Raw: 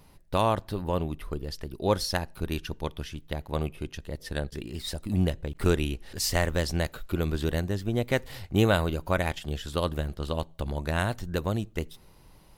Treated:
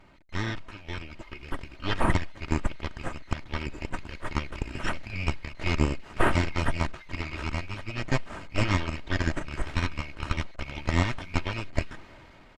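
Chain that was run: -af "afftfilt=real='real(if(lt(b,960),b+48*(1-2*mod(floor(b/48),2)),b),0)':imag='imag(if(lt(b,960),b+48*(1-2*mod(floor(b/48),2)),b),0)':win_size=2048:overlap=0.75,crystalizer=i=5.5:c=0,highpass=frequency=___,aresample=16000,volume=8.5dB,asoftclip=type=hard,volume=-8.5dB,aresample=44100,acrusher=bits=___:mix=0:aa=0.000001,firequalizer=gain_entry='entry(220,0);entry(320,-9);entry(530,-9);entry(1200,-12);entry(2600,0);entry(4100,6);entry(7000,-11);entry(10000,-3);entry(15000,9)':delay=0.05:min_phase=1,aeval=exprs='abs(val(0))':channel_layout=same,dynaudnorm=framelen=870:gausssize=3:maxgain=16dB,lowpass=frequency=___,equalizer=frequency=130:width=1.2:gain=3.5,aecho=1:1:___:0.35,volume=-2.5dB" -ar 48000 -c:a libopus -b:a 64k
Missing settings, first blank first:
49, 7, 2400, 3.2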